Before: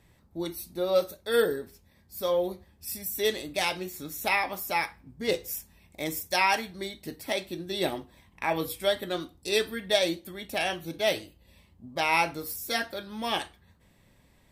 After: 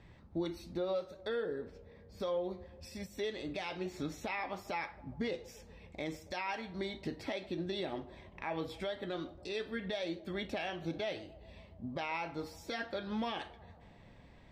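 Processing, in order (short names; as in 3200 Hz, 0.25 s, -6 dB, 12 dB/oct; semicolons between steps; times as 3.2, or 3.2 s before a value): compressor 6:1, threshold -36 dBFS, peak gain reduction 17 dB; 1.28–2.2 high shelf 3900 Hz -8.5 dB; narrowing echo 0.138 s, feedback 76%, band-pass 600 Hz, level -20.5 dB; limiter -30 dBFS, peak gain reduction 9 dB; air absorption 160 m; gain +4 dB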